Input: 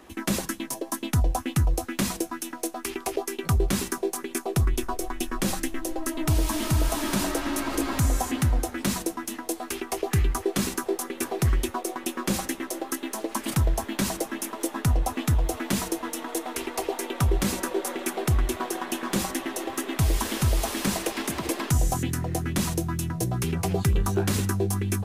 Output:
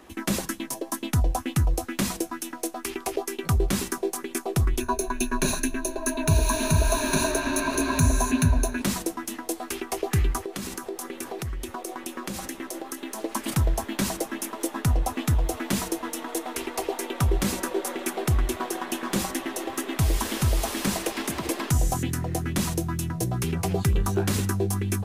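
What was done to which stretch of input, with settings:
0:04.80–0:08.82: EQ curve with evenly spaced ripples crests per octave 1.5, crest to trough 16 dB
0:10.45–0:13.20: downward compressor, threshold −29 dBFS

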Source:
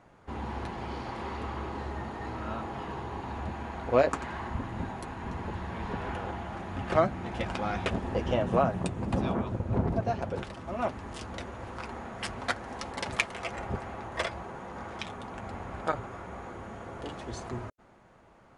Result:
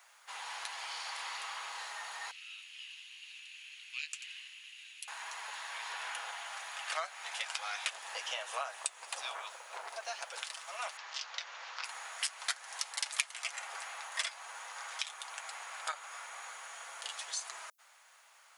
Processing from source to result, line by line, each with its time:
0:02.31–0:05.08: four-pole ladder high-pass 2,500 Hz, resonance 70%
0:10.97–0:11.84: Butterworth low-pass 5,800 Hz
whole clip: Bessel high-pass filter 940 Hz, order 8; first difference; downward compressor 2 to 1, threshold −53 dBFS; level +15.5 dB

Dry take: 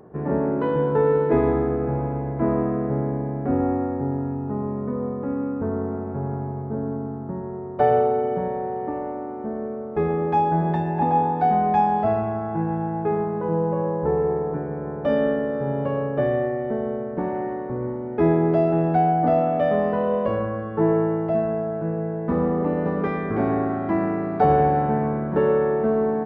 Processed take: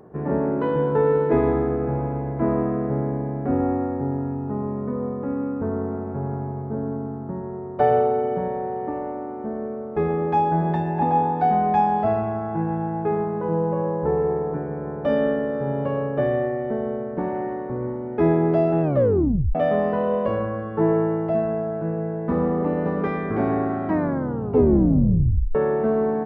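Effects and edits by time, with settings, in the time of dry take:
0:18.82: tape stop 0.73 s
0:23.85: tape stop 1.70 s

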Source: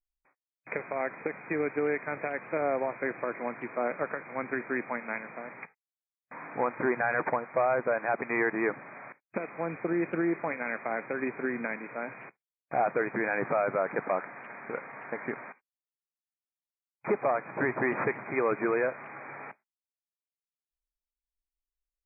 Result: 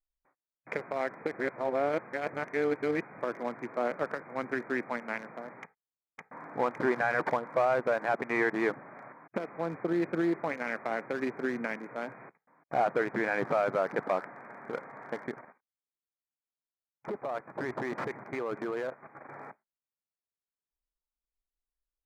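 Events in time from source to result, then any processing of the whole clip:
0:01.33–0:03.18: reverse
0:05.62–0:06.47: delay throw 560 ms, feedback 80%, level −0.5 dB
0:15.18–0:19.29: output level in coarse steps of 11 dB
whole clip: adaptive Wiener filter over 15 samples

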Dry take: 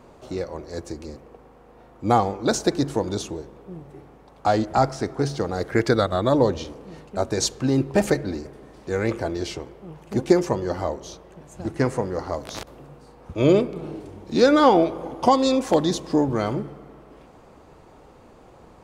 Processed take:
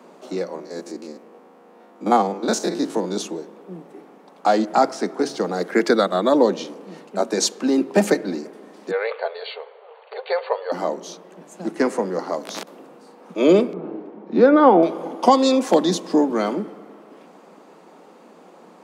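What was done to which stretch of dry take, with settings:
0:00.55–0:03.16: spectrum averaged block by block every 50 ms
0:08.91–0:10.72: linear-phase brick-wall band-pass 410–4,600 Hz
0:13.73–0:14.83: low-pass filter 1,600 Hz
whole clip: Butterworth high-pass 170 Hz 96 dB per octave; level +3 dB

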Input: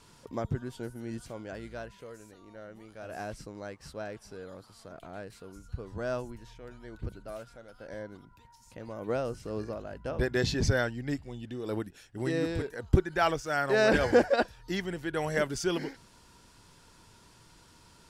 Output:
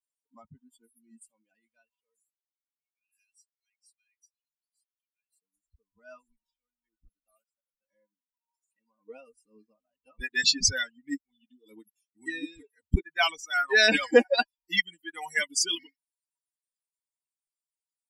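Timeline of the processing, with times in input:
0:02.21–0:05.34: Chebyshev high-pass filter 2,200 Hz
whole clip: spectral dynamics exaggerated over time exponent 3; flat-topped bell 4,200 Hz +13.5 dB 2.8 octaves; comb filter 4.1 ms, depth 78%; level +2 dB

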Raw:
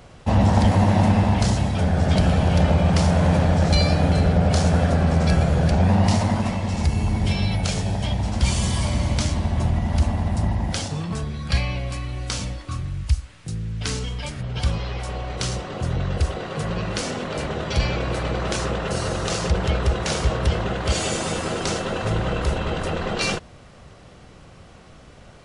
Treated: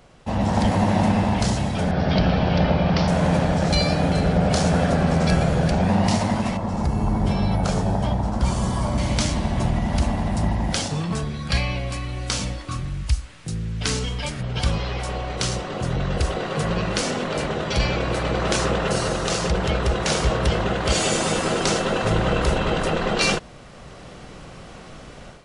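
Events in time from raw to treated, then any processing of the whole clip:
0:01.91–0:03.08: Butterworth low-pass 5,400 Hz 48 dB per octave
0:06.57–0:08.98: high shelf with overshoot 1,700 Hz −9 dB, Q 1.5
whole clip: automatic gain control; parametric band 84 Hz −9.5 dB 0.62 octaves; level −4.5 dB

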